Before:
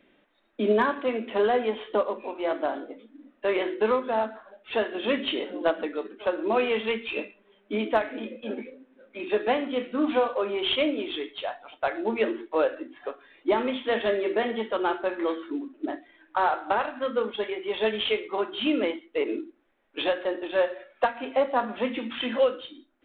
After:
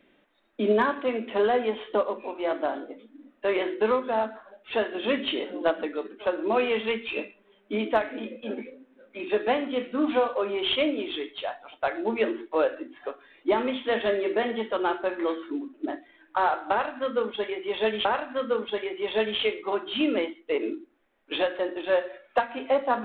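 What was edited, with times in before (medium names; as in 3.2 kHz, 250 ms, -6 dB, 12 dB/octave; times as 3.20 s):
16.71–18.05 s: loop, 2 plays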